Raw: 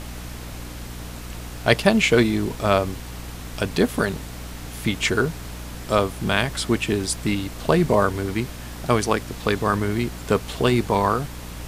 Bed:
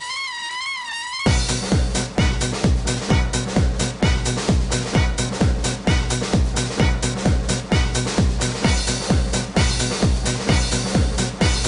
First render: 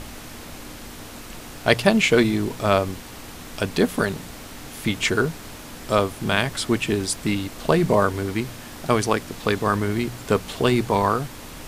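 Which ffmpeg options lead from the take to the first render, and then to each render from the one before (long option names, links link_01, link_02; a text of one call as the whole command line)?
ffmpeg -i in.wav -af "bandreject=frequency=60:width_type=h:width=4,bandreject=frequency=120:width_type=h:width=4,bandreject=frequency=180:width_type=h:width=4" out.wav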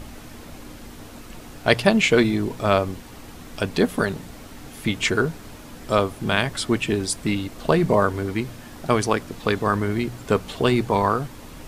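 ffmpeg -i in.wav -af "afftdn=noise_reduction=6:noise_floor=-39" out.wav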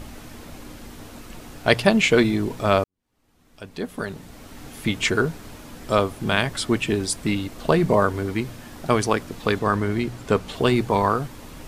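ffmpeg -i in.wav -filter_complex "[0:a]asettb=1/sr,asplit=3[link_01][link_02][link_03];[link_01]atrim=end=9.594[link_04];[link_02]atrim=start=9.59:end=10.54,asetpts=PTS-STARTPTS,afade=type=in:duration=0.004:curve=qsin,afade=type=out:start_time=0.946:duration=0.004:curve=qsin,highshelf=frequency=12000:gain=-8[link_05];[link_03]atrim=start=10.536[link_06];[link_04][link_05]acrossfade=duration=0.004:curve1=hsin:curve2=qsin[link_07];[link_07][link_06]acrossfade=duration=0.004:curve1=qsin:curve2=hsin,asplit=2[link_08][link_09];[link_08]atrim=end=2.84,asetpts=PTS-STARTPTS,afade=type=out:start_time=2.836:duration=0.004:curve=hsin[link_10];[link_09]atrim=start=2.84,asetpts=PTS-STARTPTS,afade=type=in:duration=1.79:curve=qua[link_11];[link_10][link_11]concat=n=2:v=0:a=1" out.wav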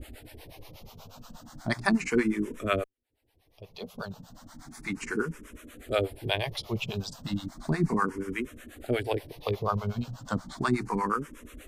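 ffmpeg -i in.wav -filter_complex "[0:a]acrossover=split=490[link_01][link_02];[link_01]aeval=exprs='val(0)*(1-1/2+1/2*cos(2*PI*8.3*n/s))':channel_layout=same[link_03];[link_02]aeval=exprs='val(0)*(1-1/2-1/2*cos(2*PI*8.3*n/s))':channel_layout=same[link_04];[link_03][link_04]amix=inputs=2:normalize=0,asplit=2[link_05][link_06];[link_06]afreqshift=0.34[link_07];[link_05][link_07]amix=inputs=2:normalize=1" out.wav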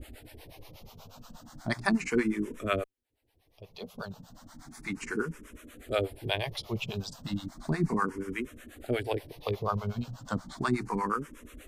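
ffmpeg -i in.wav -af "volume=-2dB" out.wav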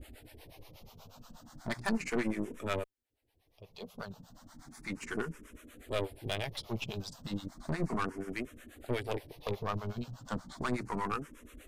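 ffmpeg -i in.wav -af "aeval=exprs='(tanh(20*val(0)+0.7)-tanh(0.7))/20':channel_layout=same" out.wav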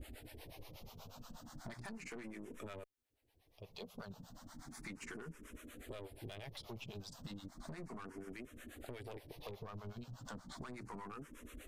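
ffmpeg -i in.wav -af "alimiter=level_in=7dB:limit=-24dB:level=0:latency=1:release=17,volume=-7dB,acompressor=threshold=-45dB:ratio=6" out.wav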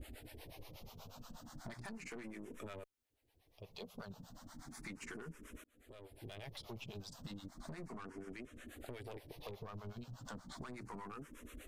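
ffmpeg -i in.wav -filter_complex "[0:a]asettb=1/sr,asplit=3[link_01][link_02][link_03];[link_01]atrim=end=7.924[link_04];[link_02]atrim=start=7.92:end=8.66,asetpts=PTS-STARTPTS,afade=type=in:duration=0.004:curve=qsin,afade=type=out:start_time=0.736:duration=0.004:curve=qsin,lowpass=9000[link_05];[link_03]atrim=start=8.656[link_06];[link_04][link_05]acrossfade=duration=0.004:curve1=hsin:curve2=qsin[link_07];[link_07][link_06]acrossfade=duration=0.004:curve1=qsin:curve2=hsin,asplit=2[link_08][link_09];[link_08]atrim=end=5.64,asetpts=PTS-STARTPTS,afade=type=out:start_time=5.636:duration=0.004:curve=hsin[link_10];[link_09]atrim=start=5.64,asetpts=PTS-STARTPTS,afade=type=in:duration=0.79[link_11];[link_10][link_11]concat=n=2:v=0:a=1" out.wav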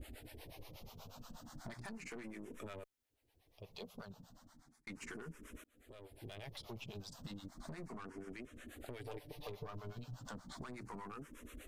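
ffmpeg -i in.wav -filter_complex "[0:a]asettb=1/sr,asplit=3[link_01][link_02][link_03];[link_01]atrim=end=8.994[link_04];[link_02]atrim=start=8.99:end=10.19,asetpts=PTS-STARTPTS,afade=type=in:duration=0.004:curve=qsin,afade=type=out:start_time=1.196:duration=0.004:curve=qsin,aecho=1:1:6.8:0.57,atrim=end_sample=52920[link_05];[link_03]atrim=start=10.186[link_06];[link_04][link_05]acrossfade=duration=0.004:curve1=hsin:curve2=qsin[link_07];[link_07][link_06]acrossfade=duration=0.004:curve1=qsin:curve2=hsin,asplit=2[link_08][link_09];[link_08]atrim=end=4.87,asetpts=PTS-STARTPTS,afade=type=out:start_time=3.85:duration=1.02[link_10];[link_09]atrim=start=4.87,asetpts=PTS-STARTPTS,afade=type=in:duration=0.004:curve=hsin[link_11];[link_10][link_11]concat=n=2:v=0:a=1" out.wav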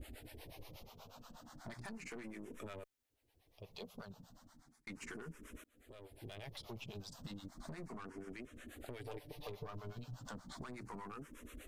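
ffmpeg -i in.wav -filter_complex "[0:a]asettb=1/sr,asplit=3[link_01][link_02][link_03];[link_01]atrim=end=0.834[link_04];[link_02]atrim=start=0.83:end=1.67,asetpts=PTS-STARTPTS,afade=type=in:duration=0.004:curve=qsin,afade=type=out:start_time=0.836:duration=0.004:curve=qsin,bass=frequency=250:gain=-6,treble=frequency=4000:gain=-4[link_05];[link_03]atrim=start=1.666[link_06];[link_04][link_05]acrossfade=duration=0.004:curve1=hsin:curve2=qsin[link_07];[link_07][link_06]acrossfade=duration=0.004:curve1=qsin:curve2=hsin" out.wav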